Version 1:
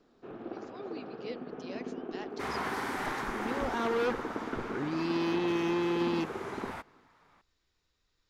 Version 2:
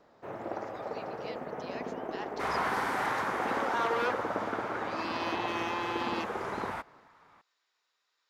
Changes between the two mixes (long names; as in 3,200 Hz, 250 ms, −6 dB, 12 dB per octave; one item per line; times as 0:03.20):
speech: add high-pass filter 700 Hz 12 dB per octave
first sound: remove loudspeaker in its box 150–4,000 Hz, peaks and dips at 250 Hz +5 dB, 380 Hz +4 dB, 590 Hz −9 dB, 920 Hz −7 dB, 2,000 Hz −10 dB
master: add parametric band 990 Hz +5 dB 2.2 octaves